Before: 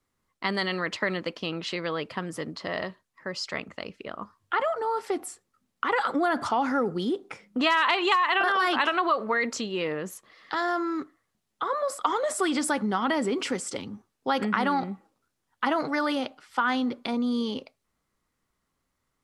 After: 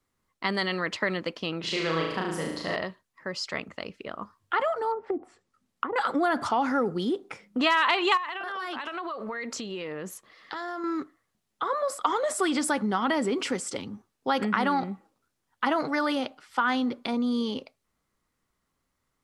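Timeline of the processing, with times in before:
1.60–2.76 s: flutter echo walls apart 6.3 m, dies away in 0.87 s
4.91–5.96 s: low-pass that closes with the level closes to 480 Hz, closed at -25.5 dBFS
8.17–10.84 s: compression, threshold -31 dBFS

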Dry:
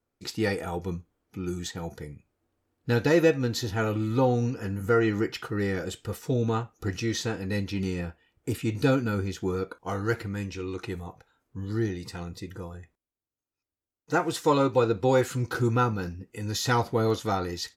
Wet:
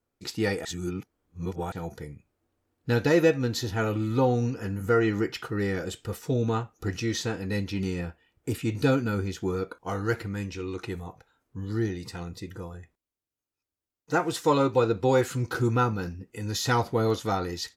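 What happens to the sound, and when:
0.65–1.72 s: reverse

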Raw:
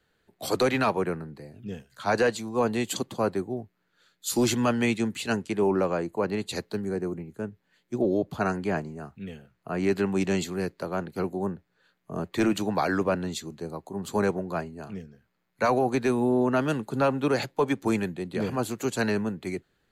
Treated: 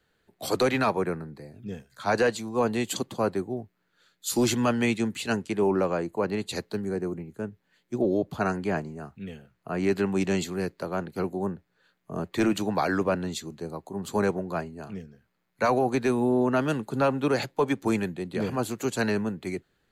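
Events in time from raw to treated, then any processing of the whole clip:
0.79–2.04 s: band-stop 2.9 kHz, Q 6.5

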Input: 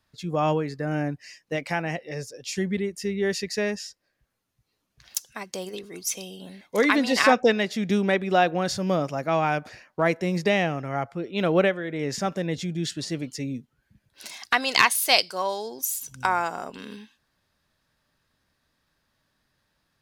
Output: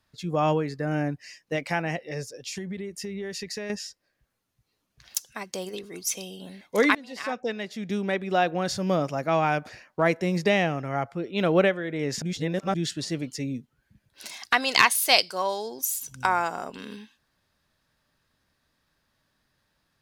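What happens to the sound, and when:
2.37–3.70 s: compression 10:1, threshold -30 dBFS
6.95–9.03 s: fade in, from -23.5 dB
12.22–12.74 s: reverse

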